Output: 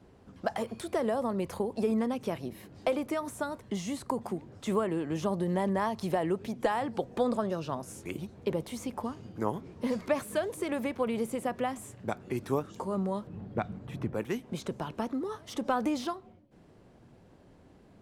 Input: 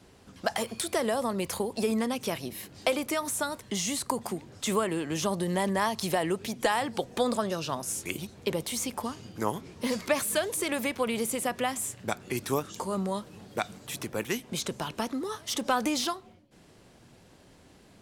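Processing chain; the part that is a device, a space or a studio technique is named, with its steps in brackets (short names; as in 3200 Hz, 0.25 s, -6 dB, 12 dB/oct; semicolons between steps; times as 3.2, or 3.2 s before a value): 13.27–14.14 tone controls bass +9 dB, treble -12 dB; through cloth (high shelf 2000 Hz -15 dB)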